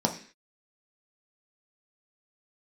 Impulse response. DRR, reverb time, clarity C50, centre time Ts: 1.5 dB, 0.45 s, 11.0 dB, 13 ms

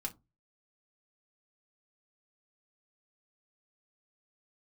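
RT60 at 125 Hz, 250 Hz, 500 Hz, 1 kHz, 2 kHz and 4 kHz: 0.45, 0.30, 0.25, 0.20, 0.15, 0.15 s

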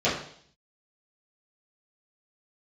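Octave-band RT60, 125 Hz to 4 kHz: 0.75, 0.65, 0.60, 0.60, 0.60, 0.70 s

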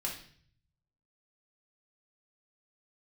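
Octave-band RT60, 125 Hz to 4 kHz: 1.2, 0.70, 0.55, 0.50, 0.55, 0.55 s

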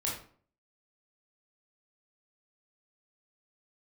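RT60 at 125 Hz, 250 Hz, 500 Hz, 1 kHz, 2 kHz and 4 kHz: 0.55, 0.55, 0.50, 0.45, 0.40, 0.35 s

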